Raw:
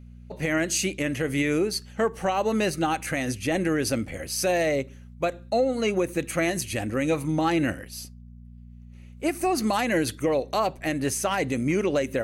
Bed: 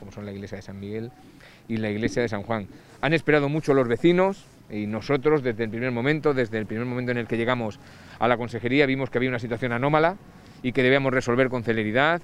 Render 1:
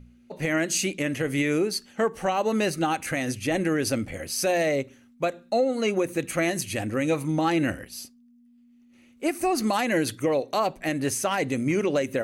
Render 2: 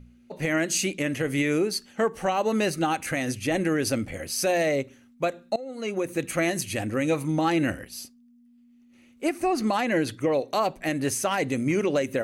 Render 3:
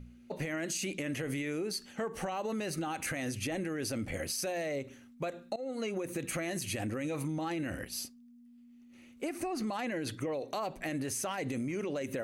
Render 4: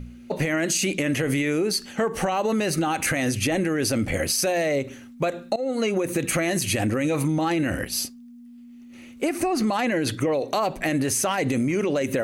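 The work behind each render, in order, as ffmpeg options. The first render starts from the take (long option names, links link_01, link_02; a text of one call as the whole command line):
ffmpeg -i in.wav -af "bandreject=frequency=60:width_type=h:width=4,bandreject=frequency=120:width_type=h:width=4,bandreject=frequency=180:width_type=h:width=4" out.wav
ffmpeg -i in.wav -filter_complex "[0:a]asettb=1/sr,asplit=3[link_01][link_02][link_03];[link_01]atrim=end=9.294[link_04];[link_02]atrim=start=9.29:end=10.34,asetpts=PTS-STARTPTS,afade=type=in:duration=0.004:curve=qsin,afade=type=out:start_time=1.046:duration=0.004:curve=qsin,lowpass=frequency=3900:poles=1[link_05];[link_03]atrim=start=10.336[link_06];[link_04][link_05]acrossfade=duration=0.004:curve1=hsin:curve2=qsin[link_07];[link_07][link_06]acrossfade=duration=0.004:curve1=qsin:curve2=hsin,asplit=2[link_08][link_09];[link_08]atrim=end=5.56,asetpts=PTS-STARTPTS,afade=type=out:start_time=5.556:duration=0.004:curve=hsin:silence=0.0841395[link_10];[link_09]atrim=start=5.56,asetpts=PTS-STARTPTS,afade=type=in:duration=0.66:silence=0.0841395[link_11];[link_10][link_11]concat=n=2:v=0:a=1" out.wav
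ffmpeg -i in.wav -af "alimiter=limit=-23.5dB:level=0:latency=1:release=46,acompressor=threshold=-32dB:ratio=6" out.wav
ffmpeg -i in.wav -af "volume=12dB" out.wav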